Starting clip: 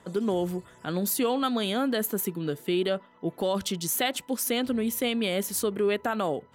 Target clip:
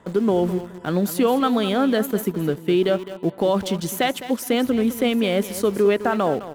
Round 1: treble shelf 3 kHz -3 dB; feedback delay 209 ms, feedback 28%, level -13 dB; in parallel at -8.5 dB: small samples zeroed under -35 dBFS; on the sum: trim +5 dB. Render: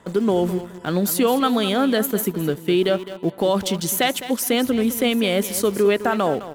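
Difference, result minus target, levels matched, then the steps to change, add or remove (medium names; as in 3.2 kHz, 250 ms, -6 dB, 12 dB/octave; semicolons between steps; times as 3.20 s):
8 kHz band +6.5 dB
change: treble shelf 3 kHz -10.5 dB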